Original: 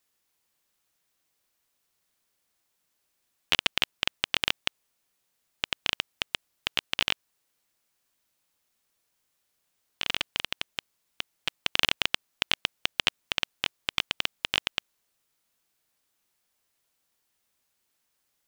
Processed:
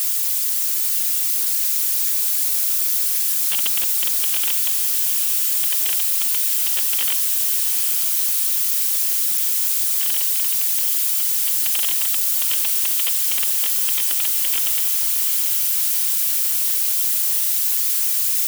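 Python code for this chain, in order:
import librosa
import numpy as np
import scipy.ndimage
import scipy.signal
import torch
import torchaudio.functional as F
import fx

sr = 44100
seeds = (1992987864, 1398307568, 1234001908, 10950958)

y = x + 0.5 * 10.0 ** (-13.5 / 20.0) * np.diff(np.sign(x), prepend=np.sign(x[:1]))
y = scipy.signal.sosfilt(scipy.signal.butter(2, 260.0, 'highpass', fs=sr, output='sos'), y)
y = fx.quant_companded(y, sr, bits=4)
y = fx.whisperise(y, sr, seeds[0])
y = fx.echo_diffused(y, sr, ms=829, feedback_pct=69, wet_db=-8)
y = y * librosa.db_to_amplitude(-5.0)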